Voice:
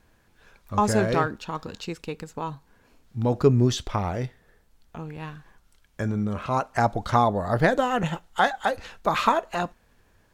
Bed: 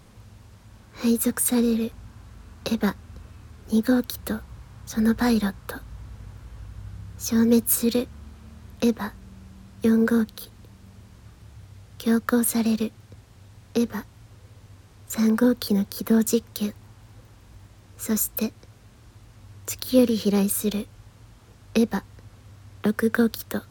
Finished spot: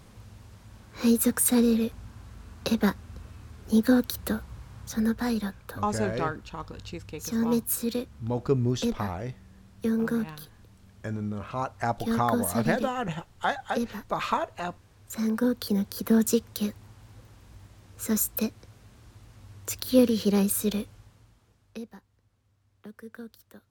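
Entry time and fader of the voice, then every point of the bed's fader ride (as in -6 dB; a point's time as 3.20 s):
5.05 s, -6.0 dB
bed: 4.84 s -0.5 dB
5.17 s -7 dB
15.24 s -7 dB
16.07 s -2 dB
20.87 s -2 dB
21.98 s -22 dB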